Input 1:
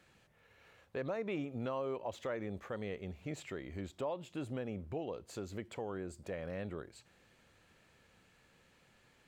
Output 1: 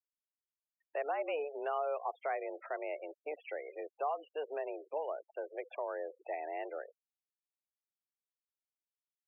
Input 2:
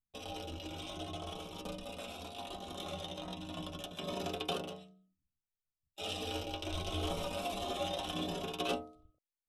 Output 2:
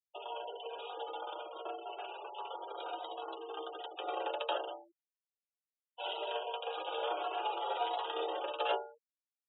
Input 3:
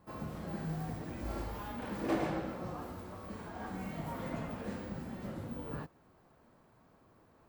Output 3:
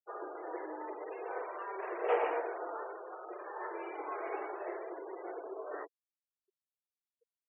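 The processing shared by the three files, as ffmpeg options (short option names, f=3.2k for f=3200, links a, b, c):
-af "highpass=f=240:t=q:w=0.5412,highpass=f=240:t=q:w=1.307,lowpass=f=3k:t=q:w=0.5176,lowpass=f=3k:t=q:w=0.7071,lowpass=f=3k:t=q:w=1.932,afreqshift=150,afftfilt=real='re*gte(hypot(re,im),0.00501)':imag='im*gte(hypot(re,im),0.00501)':win_size=1024:overlap=0.75,volume=3dB"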